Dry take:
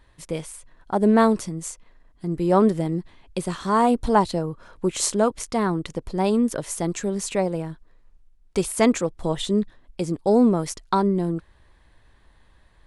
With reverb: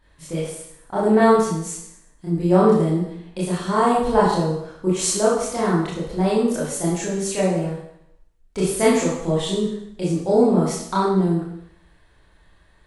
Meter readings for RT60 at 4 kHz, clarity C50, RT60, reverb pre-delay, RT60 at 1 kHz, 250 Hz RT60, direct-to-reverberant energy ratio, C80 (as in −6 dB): 0.75 s, 0.5 dB, 0.70 s, 23 ms, 0.70 s, 0.80 s, −8.0 dB, 5.0 dB